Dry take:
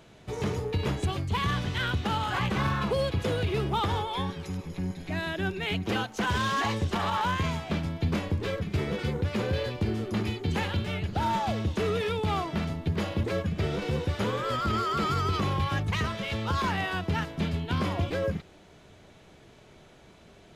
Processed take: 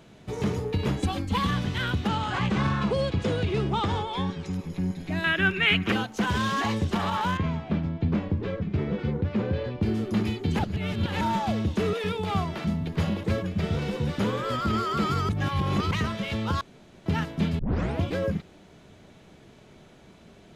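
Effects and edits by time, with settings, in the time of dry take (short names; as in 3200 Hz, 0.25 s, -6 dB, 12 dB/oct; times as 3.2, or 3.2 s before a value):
1.02–1.49 comb 3.8 ms, depth 85%
2.08–4.53 LPF 8700 Hz 24 dB/oct
5.24–5.92 band shelf 1900 Hz +12 dB
7.37–9.83 tape spacing loss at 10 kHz 24 dB
10.59–11.21 reverse
11.93–14.19 bands offset in time highs, lows 0.11 s, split 340 Hz
15.29–15.91 reverse
16.61–17.06 room tone
17.59 tape start 0.42 s
whole clip: bell 210 Hz +5.5 dB 1.2 oct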